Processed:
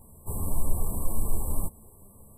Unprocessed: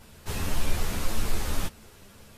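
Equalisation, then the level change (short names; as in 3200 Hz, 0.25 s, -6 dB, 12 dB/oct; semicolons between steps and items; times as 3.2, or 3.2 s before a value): brick-wall FIR band-stop 1200–7600 Hz; low shelf 220 Hz +5.5 dB; high shelf 5900 Hz +9.5 dB; -4.5 dB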